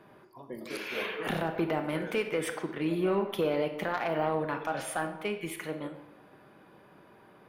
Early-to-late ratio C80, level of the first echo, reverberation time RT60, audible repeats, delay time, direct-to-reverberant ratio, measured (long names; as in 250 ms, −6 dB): 11.0 dB, no echo audible, 0.95 s, no echo audible, no echo audible, 6.5 dB